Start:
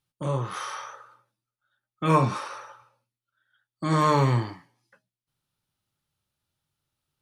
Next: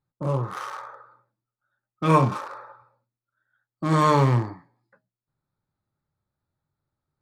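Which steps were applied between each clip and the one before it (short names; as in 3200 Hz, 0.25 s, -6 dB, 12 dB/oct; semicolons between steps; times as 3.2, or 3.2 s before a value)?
Wiener smoothing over 15 samples; gain +2.5 dB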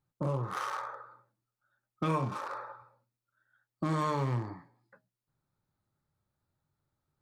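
compressor 4:1, threshold -30 dBFS, peak gain reduction 14.5 dB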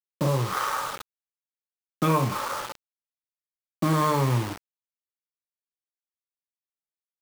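bit-crush 7-bit; gain +8 dB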